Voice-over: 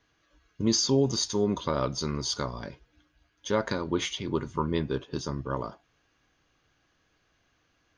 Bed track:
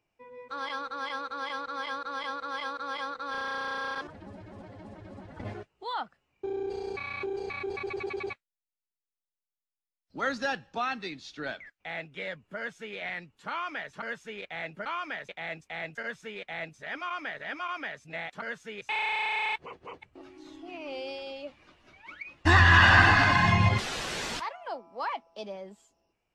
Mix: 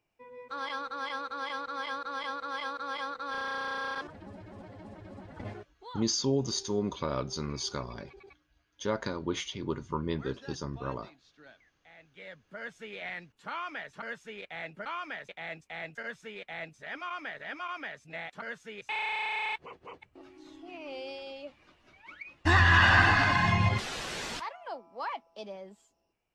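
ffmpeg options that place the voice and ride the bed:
ffmpeg -i stem1.wav -i stem2.wav -filter_complex "[0:a]adelay=5350,volume=-4.5dB[link_01];[1:a]volume=14.5dB,afade=type=out:start_time=5.37:duration=0.7:silence=0.133352,afade=type=in:start_time=11.99:duration=0.82:silence=0.16788[link_02];[link_01][link_02]amix=inputs=2:normalize=0" out.wav

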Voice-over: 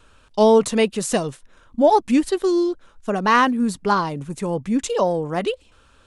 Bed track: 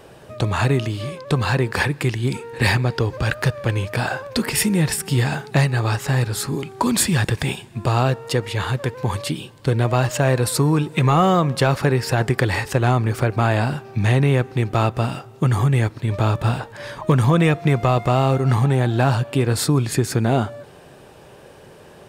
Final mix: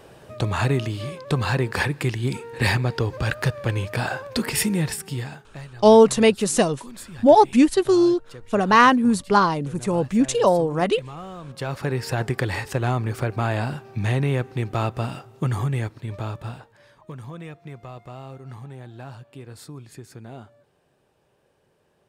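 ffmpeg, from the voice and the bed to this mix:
ffmpeg -i stem1.wav -i stem2.wav -filter_complex "[0:a]adelay=5450,volume=2dB[link_01];[1:a]volume=13dB,afade=type=out:start_time=4.63:duration=0.83:silence=0.11885,afade=type=in:start_time=11.41:duration=0.62:silence=0.158489,afade=type=out:start_time=15.43:duration=1.44:silence=0.158489[link_02];[link_01][link_02]amix=inputs=2:normalize=0" out.wav

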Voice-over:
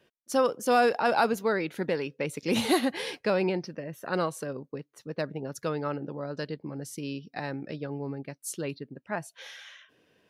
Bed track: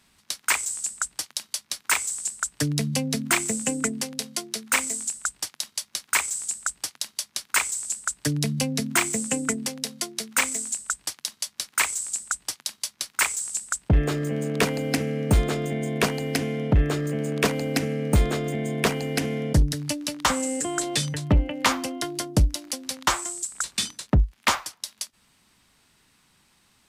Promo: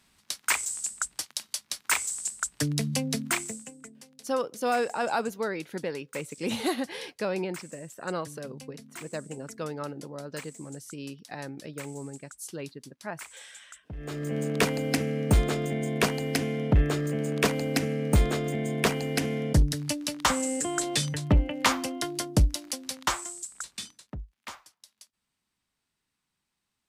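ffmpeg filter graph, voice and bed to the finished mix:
ffmpeg -i stem1.wav -i stem2.wav -filter_complex "[0:a]adelay=3950,volume=-4dB[link_01];[1:a]volume=16.5dB,afade=type=out:start_time=3.15:duration=0.56:silence=0.11885,afade=type=in:start_time=13.97:duration=0.42:silence=0.105925,afade=type=out:start_time=22.56:duration=1.6:silence=0.125893[link_02];[link_01][link_02]amix=inputs=2:normalize=0" out.wav

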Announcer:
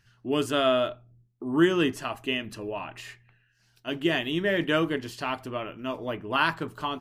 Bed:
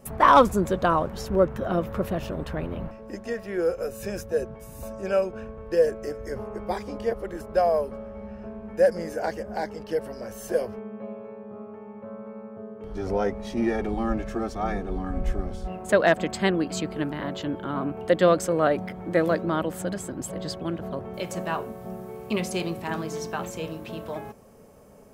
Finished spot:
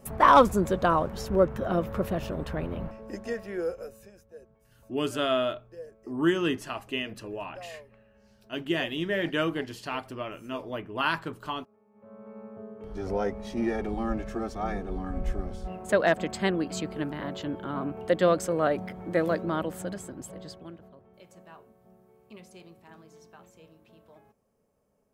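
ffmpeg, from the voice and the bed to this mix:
ffmpeg -i stem1.wav -i stem2.wav -filter_complex "[0:a]adelay=4650,volume=-3dB[link_01];[1:a]volume=17.5dB,afade=type=out:start_time=3.26:duration=0.85:silence=0.0891251,afade=type=in:start_time=11.91:duration=0.53:silence=0.112202,afade=type=out:start_time=19.62:duration=1.32:silence=0.125893[link_02];[link_01][link_02]amix=inputs=2:normalize=0" out.wav

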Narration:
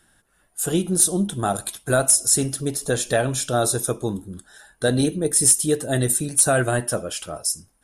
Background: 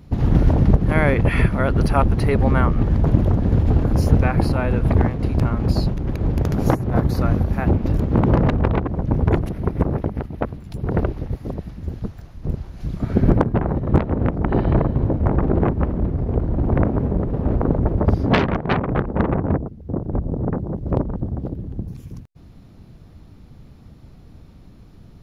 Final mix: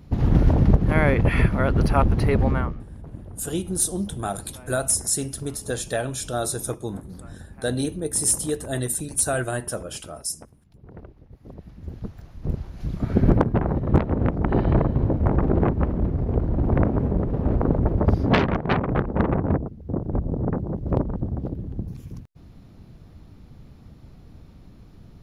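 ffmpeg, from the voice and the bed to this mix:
ffmpeg -i stem1.wav -i stem2.wav -filter_complex "[0:a]adelay=2800,volume=-5.5dB[link_01];[1:a]volume=18.5dB,afade=type=out:start_time=2.38:duration=0.44:silence=0.0944061,afade=type=in:start_time=11.3:duration=1.2:silence=0.0944061[link_02];[link_01][link_02]amix=inputs=2:normalize=0" out.wav

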